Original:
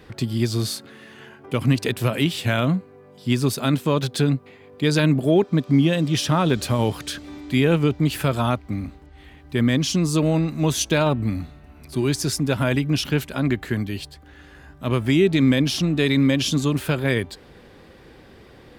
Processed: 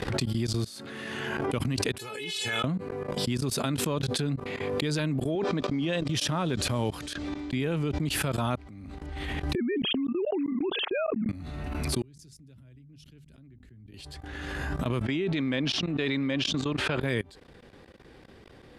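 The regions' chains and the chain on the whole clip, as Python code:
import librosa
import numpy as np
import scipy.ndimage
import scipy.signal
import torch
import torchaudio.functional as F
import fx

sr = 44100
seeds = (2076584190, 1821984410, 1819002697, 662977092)

y = fx.chain(x, sr, fx.bandpass_edges(low_hz=150.0, high_hz=8000.0),
    fx.high_shelf(hz=4300.0, db=8.5),
    fx.comb_fb(f0_hz=430.0, decay_s=0.15, harmonics='all', damping=0.0, mix_pct=100), at=(1.98, 2.64))
y = fx.chain(y, sr, fx.highpass(hz=340.0, slope=6),
    fx.air_absorb(metres=64.0),
    fx.sustainer(db_per_s=25.0), at=(5.35, 6.08))
y = fx.chain(y, sr, fx.air_absorb(metres=63.0),
    fx.gate_hold(open_db=-25.0, close_db=-36.0, hold_ms=71.0, range_db=-21, attack_ms=1.4, release_ms=100.0), at=(7.13, 7.6))
y = fx.chain(y, sr, fx.sine_speech(),
    fx.peak_eq(hz=390.0, db=11.0, octaves=0.52),
    fx.level_steps(step_db=21), at=(9.55, 11.29))
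y = fx.chain(y, sr, fx.tone_stack(knobs='10-0-1'),
    fx.hum_notches(base_hz=50, count=5),
    fx.band_widen(depth_pct=70), at=(12.02, 13.94))
y = fx.chain(y, sr, fx.lowpass(hz=3700.0, slope=12),
    fx.low_shelf(hz=220.0, db=-9.5),
    fx.sustainer(db_per_s=28.0), at=(15.02, 17.01))
y = fx.level_steps(y, sr, step_db=24)
y = scipy.signal.sosfilt(scipy.signal.butter(8, 12000.0, 'lowpass', fs=sr, output='sos'), y)
y = fx.pre_swell(y, sr, db_per_s=21.0)
y = F.gain(torch.from_numpy(y), -4.0).numpy()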